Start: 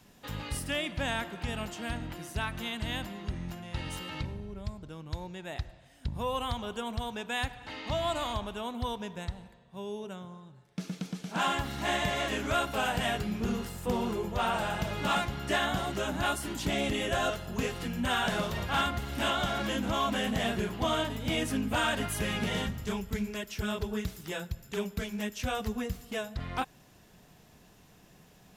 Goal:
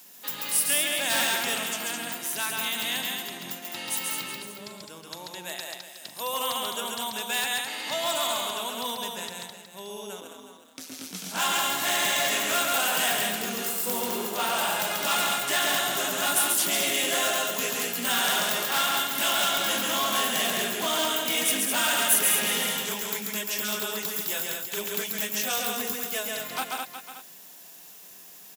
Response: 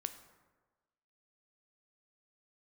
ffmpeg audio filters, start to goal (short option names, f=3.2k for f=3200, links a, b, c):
-filter_complex "[0:a]asettb=1/sr,asplit=3[a][b][c];[a]atrim=end=5.434[d];[b]atrim=start=5.43:end=6.34,asetpts=PTS-STARTPTS,afade=t=in:d=0.004:c=qsin,afade=t=out:st=0.906:d=0.004:c=qsin,bass=f=250:g=-9,treble=f=4k:g=3[e];[c]atrim=start=6.336[f];[d][e]acrossfade=d=0.004:c1=hsin:c2=qsin[g];[g][f]acrossfade=d=0.004:c1=qsin:c2=hsin,asplit=2[h][i];[i]aecho=0:1:137|209.9:0.708|0.562[j];[h][j]amix=inputs=2:normalize=0,asettb=1/sr,asplit=3[k][l][m];[k]atrim=end=1.104[n];[l]atrim=start=1.1:end=1.58,asetpts=PTS-STARTPTS,afade=t=in:d=0.004:c=qsin,afade=t=out:st=0.476:d=0.004:c=qsin,acontrast=23[o];[m]atrim=start=1.576[p];[n][o]acrossfade=d=0.004:c1=hsin:c2=qsin[q];[q][p]acrossfade=d=0.004:c1=qsin:c2=hsin,asplit=3[r][s][t];[r]afade=t=out:st=10.2:d=0.02[u];[s]aeval=exprs='val(0)*sin(2*PI*79*n/s)':c=same,afade=t=in:st=10.2:d=0.02,afade=t=out:st=11.12:d=0.02[v];[t]afade=t=in:st=11.12:d=0.02[w];[u][v][w]amix=inputs=3:normalize=0,highpass=f=160:w=0.5412,highpass=f=160:w=1.3066,asplit=2[x][y];[y]aecho=0:1:366:0.266[z];[x][z]amix=inputs=2:normalize=0,asoftclip=type=hard:threshold=-23.5dB,aemphasis=mode=production:type=riaa,volume=1.5dB"